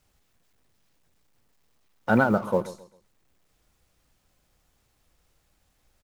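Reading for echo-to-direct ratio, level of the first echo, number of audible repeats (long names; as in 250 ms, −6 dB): −15.5 dB, −16.0 dB, 2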